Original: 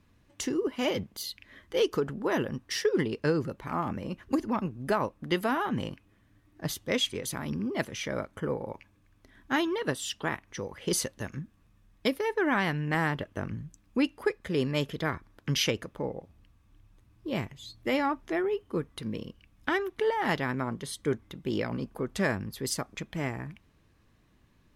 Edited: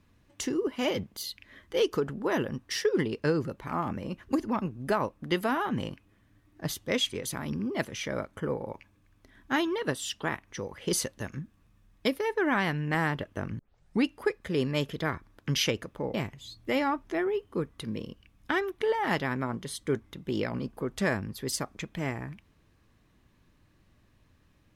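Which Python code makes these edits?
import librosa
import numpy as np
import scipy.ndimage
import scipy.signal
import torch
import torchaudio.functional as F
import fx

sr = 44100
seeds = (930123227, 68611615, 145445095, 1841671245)

y = fx.edit(x, sr, fx.tape_start(start_s=13.59, length_s=0.45),
    fx.cut(start_s=16.14, length_s=1.18), tone=tone)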